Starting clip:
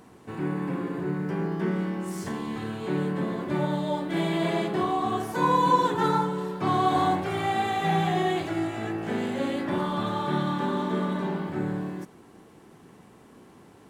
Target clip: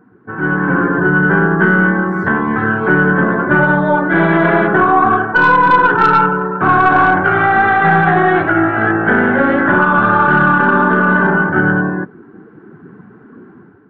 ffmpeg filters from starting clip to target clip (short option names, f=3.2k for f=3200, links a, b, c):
-af "afftdn=nr=16:nf=-43,lowpass=f=1.5k:t=q:w=9.4,aeval=exprs='0.596*(cos(1*acos(clip(val(0)/0.596,-1,1)))-cos(1*PI/2))+0.0376*(cos(4*acos(clip(val(0)/0.596,-1,1)))-cos(4*PI/2))+0.0473*(cos(5*acos(clip(val(0)/0.596,-1,1)))-cos(5*PI/2))+0.015*(cos(7*acos(clip(val(0)/0.596,-1,1)))-cos(7*PI/2))':c=same,dynaudnorm=f=410:g=3:m=10dB,alimiter=level_in=6dB:limit=-1dB:release=50:level=0:latency=1,volume=-1dB"